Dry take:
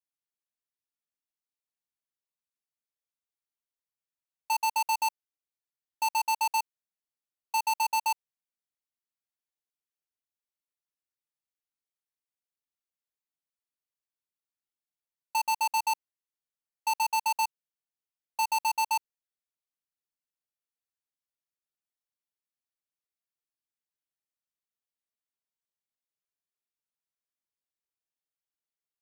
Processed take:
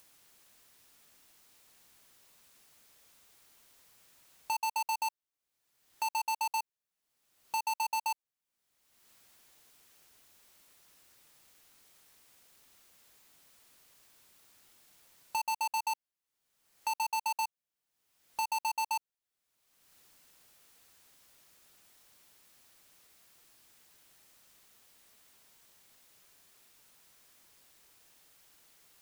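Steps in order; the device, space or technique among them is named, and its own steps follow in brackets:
upward and downward compression (upward compression, threshold −39 dBFS; downward compressor 5 to 1, threshold −32 dBFS, peak gain reduction 5.5 dB)

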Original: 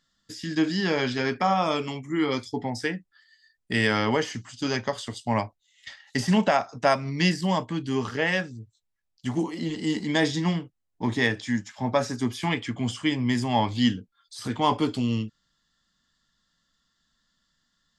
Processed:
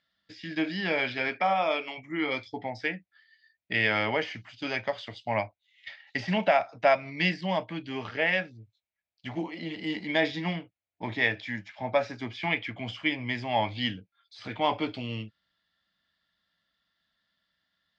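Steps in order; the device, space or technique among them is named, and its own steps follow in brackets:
0:01.28–0:01.97: high-pass filter 160 Hz → 390 Hz 12 dB per octave
guitar cabinet (loudspeaker in its box 87–4,200 Hz, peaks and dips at 140 Hz −10 dB, 240 Hz −9 dB, 400 Hz −6 dB, 640 Hz +6 dB, 1,100 Hz −5 dB, 2,300 Hz +9 dB)
level −3 dB

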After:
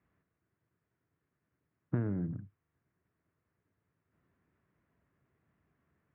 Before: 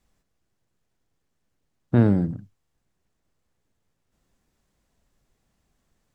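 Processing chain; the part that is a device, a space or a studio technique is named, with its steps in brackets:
bass amplifier (downward compressor 4 to 1, threshold −30 dBFS, peak gain reduction 15.5 dB; loudspeaker in its box 78–2,100 Hz, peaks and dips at 220 Hz −5 dB, 530 Hz −6 dB, 800 Hz −8 dB)

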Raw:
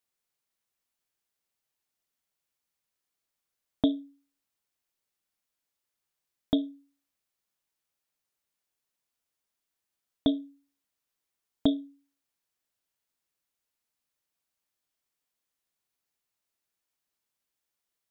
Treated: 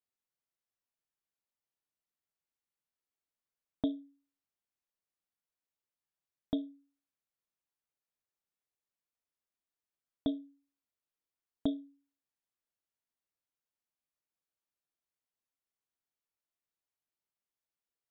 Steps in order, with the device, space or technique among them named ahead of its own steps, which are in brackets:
behind a face mask (high-shelf EQ 2,400 Hz −7 dB)
level −7.5 dB

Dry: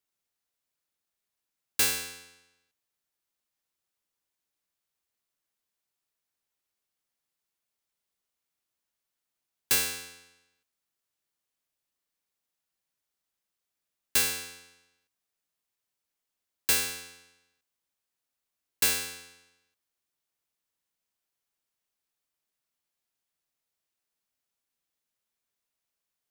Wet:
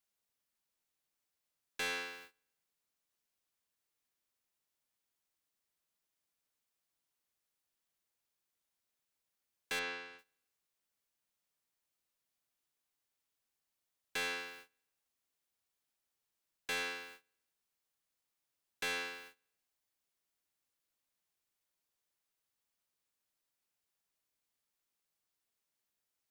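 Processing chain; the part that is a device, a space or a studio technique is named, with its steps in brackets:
aircraft radio (band-pass filter 330–2,500 Hz; hard clipping −36.5 dBFS, distortion −7 dB; white noise bed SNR 15 dB; noise gate −56 dBFS, range −22 dB)
0:09.79–0:10.19: high-frequency loss of the air 110 metres
level +2 dB

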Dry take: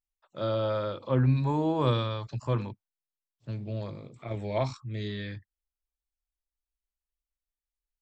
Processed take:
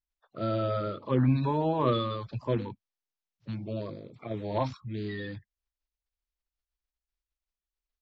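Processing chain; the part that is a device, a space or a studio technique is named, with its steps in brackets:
clip after many re-uploads (low-pass filter 5,000 Hz 24 dB per octave; spectral magnitudes quantised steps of 30 dB)

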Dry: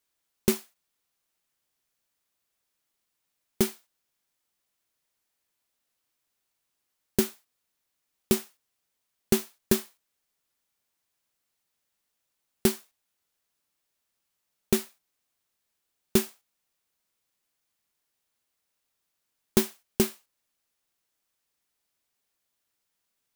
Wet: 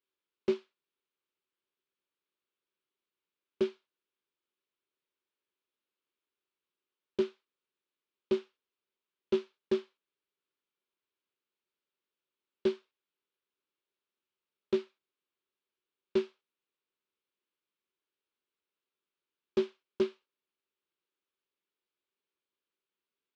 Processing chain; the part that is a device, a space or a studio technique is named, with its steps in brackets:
guitar amplifier (tube saturation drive 21 dB, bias 0.65; bass and treble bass −4 dB, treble +5 dB; loudspeaker in its box 100–3,400 Hz, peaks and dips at 120 Hz −8 dB, 380 Hz +10 dB, 740 Hz −9 dB, 1,900 Hz −6 dB)
notch filter 680 Hz, Q 12
level −3 dB

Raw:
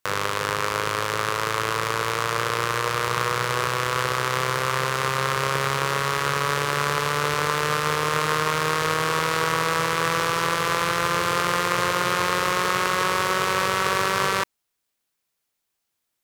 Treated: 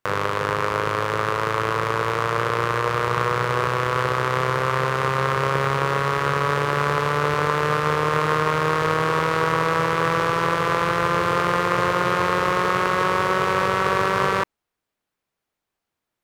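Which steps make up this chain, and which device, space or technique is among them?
through cloth (high-shelf EQ 2,900 Hz −15 dB)
level +4.5 dB

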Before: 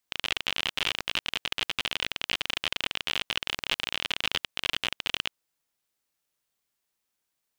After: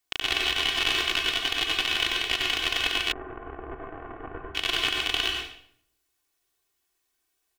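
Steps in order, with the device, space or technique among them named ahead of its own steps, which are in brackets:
microphone above a desk (comb filter 2.7 ms, depth 77%; convolution reverb RT60 0.65 s, pre-delay 88 ms, DRR −0.5 dB)
0:03.12–0:04.55: Bessel low-pass filter 830 Hz, order 6

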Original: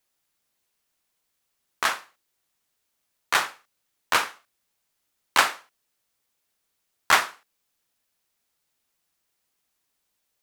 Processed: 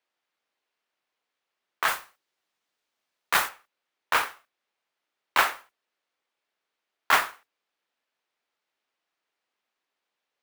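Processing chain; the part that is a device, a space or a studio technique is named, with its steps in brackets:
carbon microphone (band-pass filter 340–3,200 Hz; soft clipping −9.5 dBFS, distortion −18 dB; noise that follows the level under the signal 12 dB)
0:01.88–0:03.49: bass and treble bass +5 dB, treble +6 dB

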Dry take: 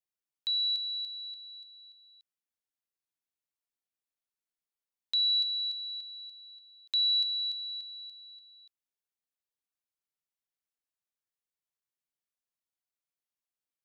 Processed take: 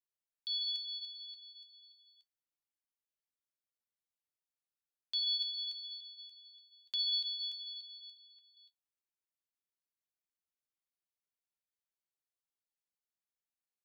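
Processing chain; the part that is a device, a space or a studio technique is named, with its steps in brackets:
0:08.17–0:08.57: low-pass filter 3,600 Hz
alien voice (ring modulation 520 Hz; flanger 0.26 Hz, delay 9.9 ms, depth 3.2 ms, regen −48%)

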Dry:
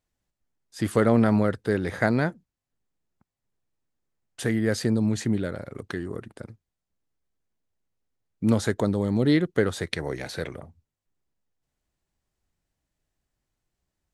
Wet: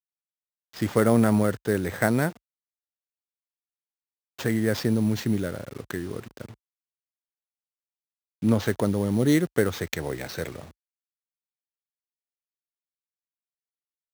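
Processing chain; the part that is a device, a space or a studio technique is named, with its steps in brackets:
early 8-bit sampler (sample-rate reduction 10,000 Hz, jitter 0%; bit reduction 8 bits)
high-pass filter 45 Hz 24 dB per octave
0:06.49–0:08.66: high-shelf EQ 5,200 Hz −5.5 dB

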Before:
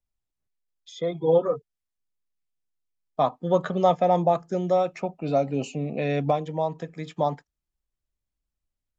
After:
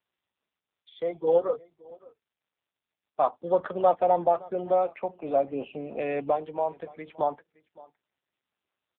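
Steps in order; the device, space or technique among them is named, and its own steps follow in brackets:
0:06.60–0:07.11: dynamic equaliser 4,100 Hz, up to −4 dB, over −54 dBFS, Q 2.3
satellite phone (band-pass filter 360–3,300 Hz; single-tap delay 567 ms −22.5 dB; AMR narrowband 5.9 kbit/s 8,000 Hz)

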